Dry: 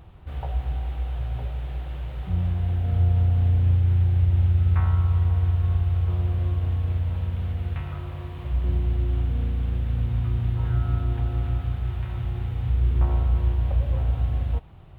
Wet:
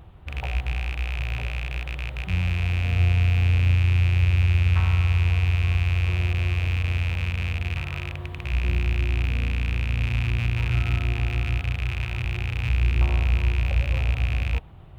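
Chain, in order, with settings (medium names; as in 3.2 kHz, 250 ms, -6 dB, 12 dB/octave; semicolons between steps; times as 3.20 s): rattle on loud lows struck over -29 dBFS, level -20 dBFS; reverse; upward compressor, threshold -40 dBFS; reverse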